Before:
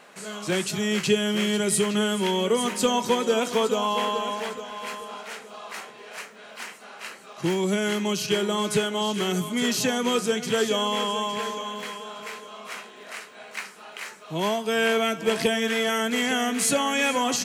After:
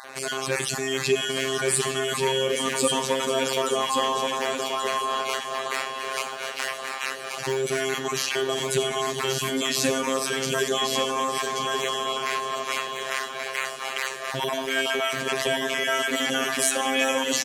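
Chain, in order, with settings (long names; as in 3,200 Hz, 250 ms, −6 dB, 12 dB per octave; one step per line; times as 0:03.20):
time-frequency cells dropped at random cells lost 24%
low-shelf EQ 140 Hz −9.5 dB
in parallel at −2 dB: compressor whose output falls as the input rises −38 dBFS, ratio −1
on the sum: phases set to zero 133 Hz
on a send: single-tap delay 1,131 ms −5 dB
on the sum: four-comb reverb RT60 0.97 s, combs from 33 ms, DRR 13 dB
level +2.5 dB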